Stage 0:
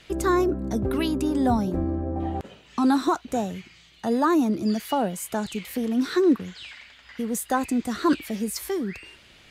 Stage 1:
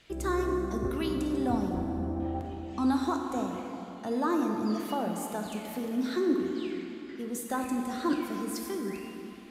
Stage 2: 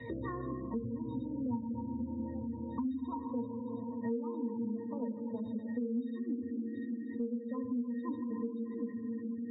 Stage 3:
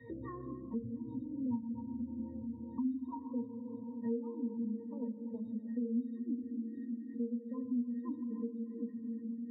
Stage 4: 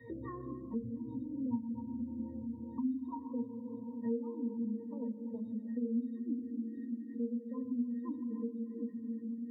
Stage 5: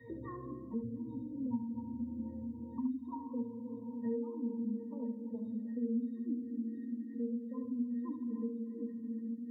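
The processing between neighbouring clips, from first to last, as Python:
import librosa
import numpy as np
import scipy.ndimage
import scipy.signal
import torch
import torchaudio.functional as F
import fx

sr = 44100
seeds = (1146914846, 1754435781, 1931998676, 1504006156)

y1 = fx.rev_plate(x, sr, seeds[0], rt60_s=3.6, hf_ratio=0.55, predelay_ms=0, drr_db=2.5)
y1 = y1 * librosa.db_to_amplitude(-8.5)
y2 = fx.octave_resonator(y1, sr, note='A#', decay_s=0.16)
y2 = fx.spec_gate(y2, sr, threshold_db=-25, keep='strong')
y2 = fx.band_squash(y2, sr, depth_pct=100)
y2 = y2 * librosa.db_to_amplitude(3.0)
y3 = fx.spectral_expand(y2, sr, expansion=1.5)
y3 = y3 * librosa.db_to_amplitude(-1.0)
y4 = fx.hum_notches(y3, sr, base_hz=50, count=5)
y4 = y4 * librosa.db_to_amplitude(1.0)
y5 = y4 + 10.0 ** (-9.0 / 20.0) * np.pad(y4, (int(71 * sr / 1000.0), 0))[:len(y4)]
y5 = y5 * librosa.db_to_amplitude(-1.0)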